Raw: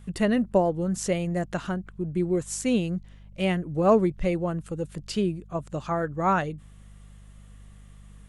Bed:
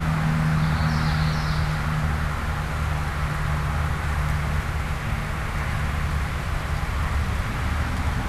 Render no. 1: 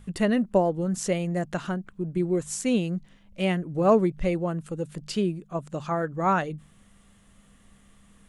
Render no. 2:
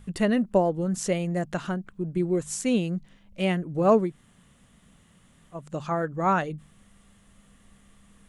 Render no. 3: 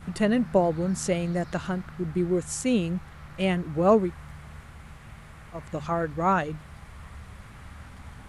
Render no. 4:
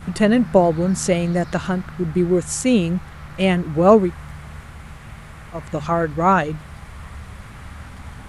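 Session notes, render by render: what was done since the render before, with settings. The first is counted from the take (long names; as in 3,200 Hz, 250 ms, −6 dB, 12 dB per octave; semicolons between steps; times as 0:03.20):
hum removal 50 Hz, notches 3
0:04.08–0:05.59: fill with room tone, crossfade 0.24 s
mix in bed −19.5 dB
level +7.5 dB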